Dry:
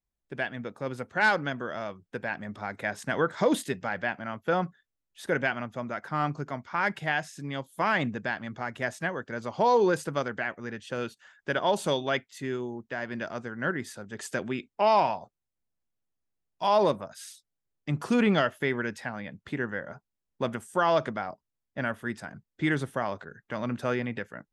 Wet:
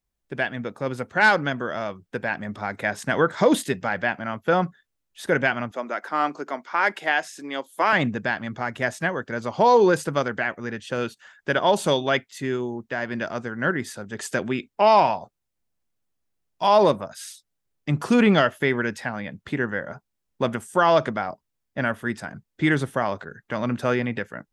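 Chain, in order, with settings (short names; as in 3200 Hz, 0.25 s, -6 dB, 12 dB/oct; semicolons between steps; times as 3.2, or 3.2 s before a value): 5.71–7.93 HPF 280 Hz 24 dB/oct; gain +6 dB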